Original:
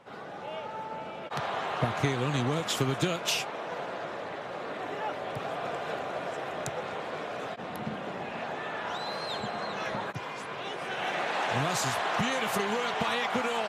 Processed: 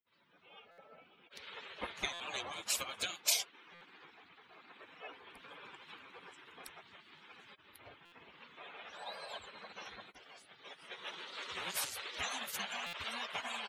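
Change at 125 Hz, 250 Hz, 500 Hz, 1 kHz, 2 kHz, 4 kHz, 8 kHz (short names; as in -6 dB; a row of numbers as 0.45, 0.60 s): -28.0, -22.5, -19.5, -16.0, -10.5, -5.5, -1.5 dB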